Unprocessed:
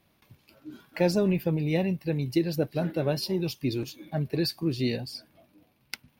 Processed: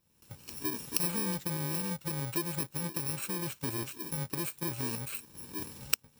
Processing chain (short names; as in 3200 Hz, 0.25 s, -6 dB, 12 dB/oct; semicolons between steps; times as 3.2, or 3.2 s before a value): FFT order left unsorted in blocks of 64 samples; recorder AGC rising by 47 dB/s; gain -9 dB